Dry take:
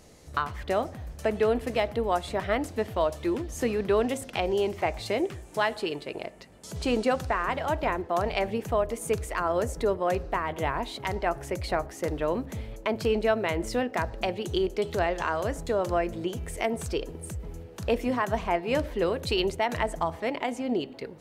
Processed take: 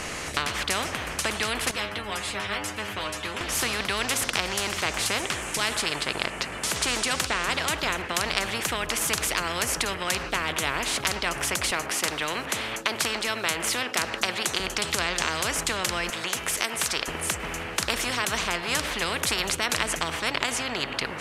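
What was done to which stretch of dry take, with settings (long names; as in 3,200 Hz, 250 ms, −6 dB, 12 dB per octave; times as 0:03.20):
0:01.71–0:03.41: stiff-string resonator 100 Hz, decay 0.29 s, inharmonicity 0.002
0:11.71–0:14.60: high-pass filter 310 Hz
0:16.10–0:17.08: high-pass filter 1,400 Hz 6 dB per octave
whole clip: Chebyshev low-pass filter 10,000 Hz, order 2; flat-topped bell 1,800 Hz +10 dB; every bin compressed towards the loudest bin 4 to 1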